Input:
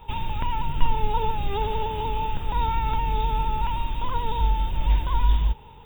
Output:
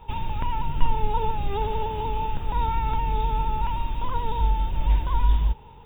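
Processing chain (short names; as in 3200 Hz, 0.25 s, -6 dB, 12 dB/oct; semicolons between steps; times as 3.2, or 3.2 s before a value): high shelf 2900 Hz -7.5 dB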